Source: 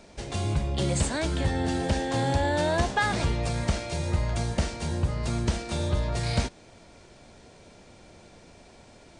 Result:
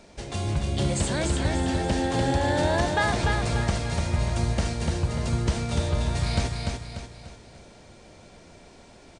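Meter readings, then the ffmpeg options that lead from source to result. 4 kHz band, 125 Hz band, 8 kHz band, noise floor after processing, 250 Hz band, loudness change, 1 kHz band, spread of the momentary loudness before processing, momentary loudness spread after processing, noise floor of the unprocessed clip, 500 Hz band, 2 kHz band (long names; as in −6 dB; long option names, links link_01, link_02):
+2.0 dB, +2.0 dB, +1.5 dB, −50 dBFS, +2.0 dB, +1.5 dB, +1.5 dB, 5 LU, 9 LU, −53 dBFS, +1.5 dB, +2.0 dB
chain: -af "aecho=1:1:294|588|882|1176|1470:0.631|0.271|0.117|0.0502|0.0216"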